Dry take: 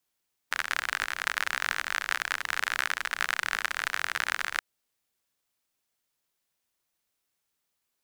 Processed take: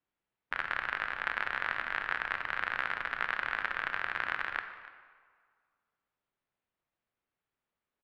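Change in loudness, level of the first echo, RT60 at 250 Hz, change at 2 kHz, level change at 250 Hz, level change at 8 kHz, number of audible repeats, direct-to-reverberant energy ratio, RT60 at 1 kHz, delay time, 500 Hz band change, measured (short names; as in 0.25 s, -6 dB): -4.0 dB, -19.0 dB, 1.6 s, -3.5 dB, 0.0 dB, under -25 dB, 1, 7.5 dB, 1.9 s, 0.291 s, -0.5 dB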